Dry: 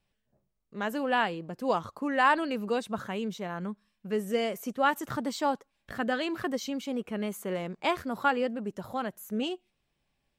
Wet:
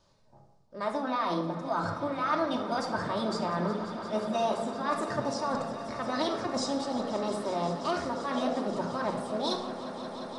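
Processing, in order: graphic EQ 125/500/1000/2000/4000 Hz +10/+11/+9/-6/+12 dB; reverse; compression 6:1, threshold -35 dBFS, peak gain reduction 23 dB; reverse; formant shift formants +4 st; on a send: echo with a slow build-up 176 ms, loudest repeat 5, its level -16 dB; on the sum: resampled via 22.05 kHz; simulated room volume 2900 m³, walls furnished, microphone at 2.7 m; trim +3.5 dB

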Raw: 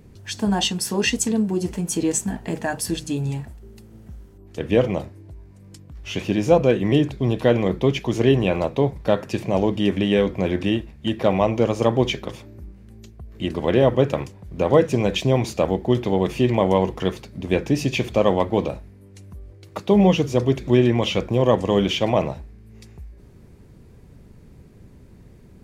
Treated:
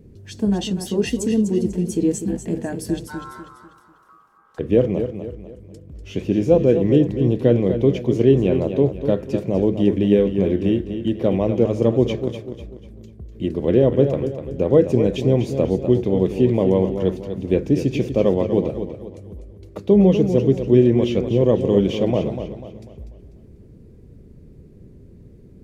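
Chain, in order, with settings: 3.07–4.59 s: ring modulator 1.2 kHz; resonant low shelf 620 Hz +9.5 dB, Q 1.5; modulated delay 246 ms, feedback 39%, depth 60 cents, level -9 dB; trim -8.5 dB

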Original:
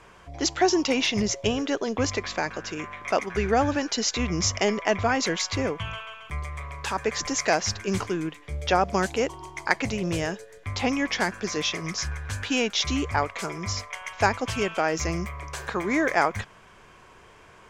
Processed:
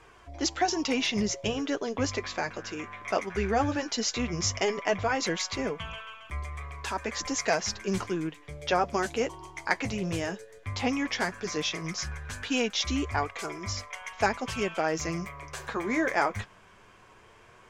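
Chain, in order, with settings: flange 0.15 Hz, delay 2.4 ms, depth 8 ms, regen -38%

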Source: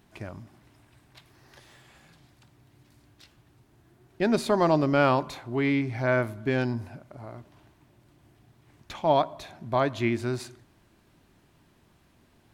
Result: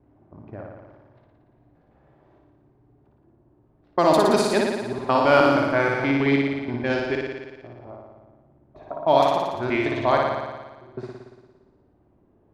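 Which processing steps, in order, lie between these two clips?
slices played last to first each 159 ms, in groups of 5; bass shelf 120 Hz +4.5 dB; level-controlled noise filter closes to 550 Hz, open at -18 dBFS; tone controls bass -10 dB, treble +4 dB; flutter echo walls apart 9.9 m, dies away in 1.3 s; trim +3.5 dB

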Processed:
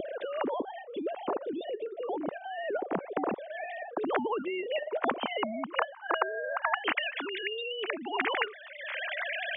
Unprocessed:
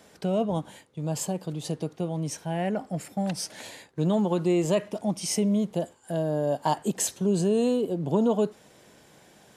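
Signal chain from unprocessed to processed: formants replaced by sine waves; upward compressor, threshold -33 dBFS; band-pass sweep 380 Hz -> 2.1 kHz, 4.01–6.97 s; spectrum-flattening compressor 4:1

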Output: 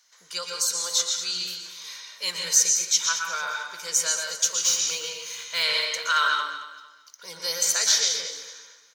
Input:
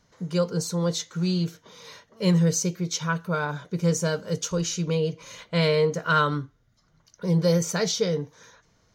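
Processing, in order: 6.25–7.27 s: median filter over 3 samples; high-pass 1.3 kHz 12 dB/octave; treble shelf 3.4 kHz +11.5 dB; 4.51–5.63 s: modulation noise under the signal 18 dB; feedback delay 224 ms, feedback 32%, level -12.5 dB; reverberation RT60 0.45 s, pre-delay 113 ms, DRR 1.5 dB

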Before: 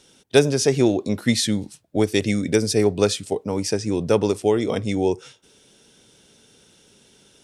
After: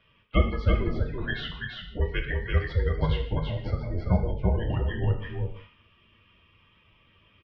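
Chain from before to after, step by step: partial rectifier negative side -12 dB; spectral gate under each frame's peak -25 dB strong; on a send: delay 336 ms -4 dB; on the sum: gated-style reverb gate 220 ms falling, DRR 2 dB; mistuned SSB -360 Hz 400–3300 Hz

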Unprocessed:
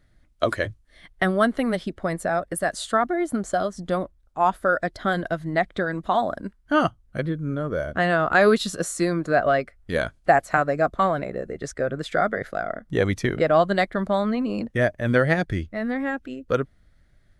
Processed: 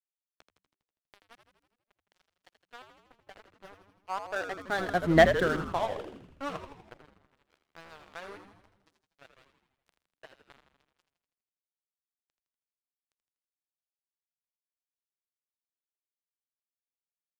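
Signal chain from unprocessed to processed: Doppler pass-by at 5.18 s, 24 m/s, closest 2.4 m; waveshaping leveller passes 2; crossover distortion -43.5 dBFS; peaking EQ 210 Hz -11.5 dB 0.35 oct; on a send: frequency-shifting echo 81 ms, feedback 61%, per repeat -99 Hz, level -8.5 dB

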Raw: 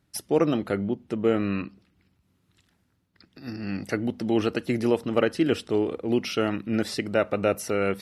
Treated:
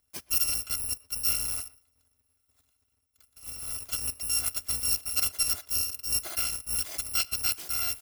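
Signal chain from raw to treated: bit-reversed sample order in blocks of 256 samples; speakerphone echo 120 ms, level -21 dB; trim -5 dB

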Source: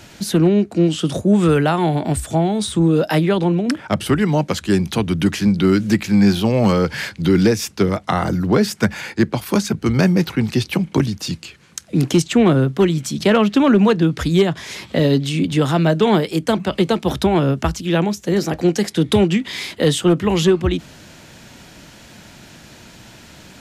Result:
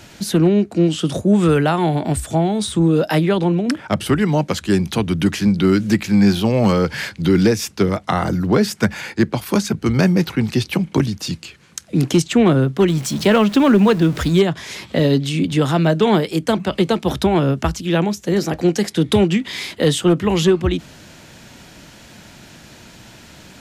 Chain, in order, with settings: 12.88–14.39 s: jump at every zero crossing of -28.5 dBFS

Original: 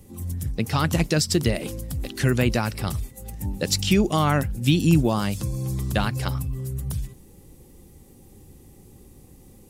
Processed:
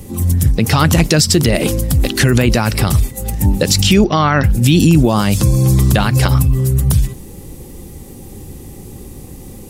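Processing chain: 4.04–4.44 s: rippled Chebyshev low-pass 5.9 kHz, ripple 6 dB; loudness maximiser +17 dB; trim -1 dB

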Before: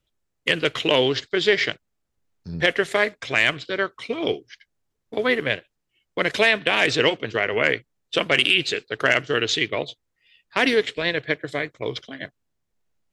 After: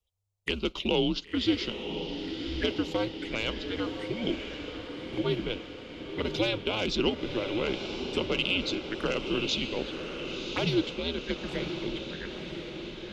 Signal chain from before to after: frequency shift -100 Hz; touch-sensitive phaser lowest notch 270 Hz, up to 1.8 kHz, full sweep at -21 dBFS; echo that smears into a reverb 1035 ms, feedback 63%, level -7 dB; trim -6 dB

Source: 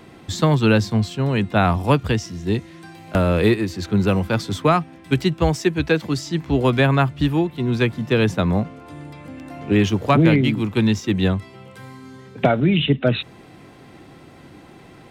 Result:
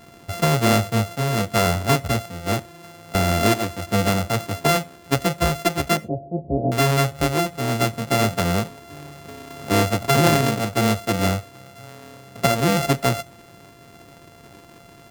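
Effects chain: sorted samples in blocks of 64 samples; 5.97–6.72 s: elliptic low-pass 670 Hz, stop band 60 dB; reverberation, pre-delay 9 ms, DRR 18 dB; trim -2 dB

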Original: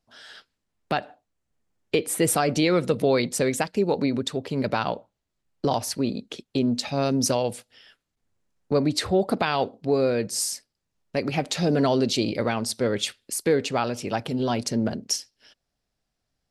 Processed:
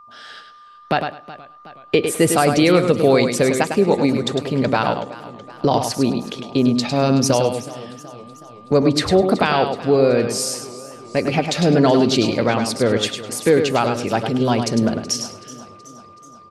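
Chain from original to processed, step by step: treble shelf 8 kHz -9 dB; on a send: feedback delay 103 ms, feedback 18%, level -7 dB; on the sum: whistle 1.2 kHz -49 dBFS; modulated delay 373 ms, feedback 58%, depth 91 cents, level -18 dB; trim +6.5 dB

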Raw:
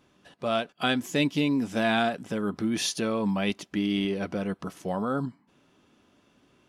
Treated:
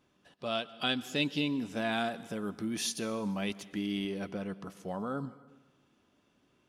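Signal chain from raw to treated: 0.35–1.48 s: time-frequency box 2.5–5.6 kHz +6 dB; 1.92–4.29 s: treble shelf 8.4 kHz +9.5 dB; reverberation RT60 1.2 s, pre-delay 107 ms, DRR 17.5 dB; trim -7.5 dB

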